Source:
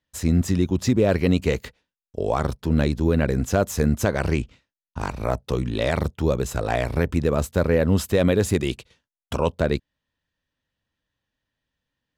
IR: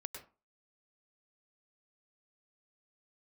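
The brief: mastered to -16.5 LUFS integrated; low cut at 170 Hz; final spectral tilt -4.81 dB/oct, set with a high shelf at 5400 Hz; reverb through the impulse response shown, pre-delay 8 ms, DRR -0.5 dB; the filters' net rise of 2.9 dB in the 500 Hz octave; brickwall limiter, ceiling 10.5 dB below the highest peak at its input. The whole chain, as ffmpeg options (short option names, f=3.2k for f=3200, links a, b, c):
-filter_complex "[0:a]highpass=170,equalizer=f=500:t=o:g=3.5,highshelf=f=5.4k:g=7,alimiter=limit=-15dB:level=0:latency=1,asplit=2[a][b];[1:a]atrim=start_sample=2205,adelay=8[c];[b][c]afir=irnorm=-1:irlink=0,volume=3dB[d];[a][d]amix=inputs=2:normalize=0,volume=7dB"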